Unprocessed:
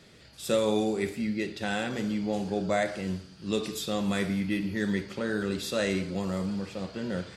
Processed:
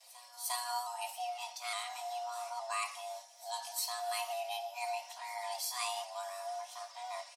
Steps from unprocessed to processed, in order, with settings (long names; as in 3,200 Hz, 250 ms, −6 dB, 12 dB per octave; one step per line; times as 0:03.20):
pitch shifter swept by a sawtooth +2 semitones, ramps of 864 ms
noise gate with hold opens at −49 dBFS
first-order pre-emphasis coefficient 0.8
comb filter 4.2 ms, depth 68%
frequency shifter +490 Hz
on a send: backwards echo 353 ms −19 dB
on the sum: level +1 dB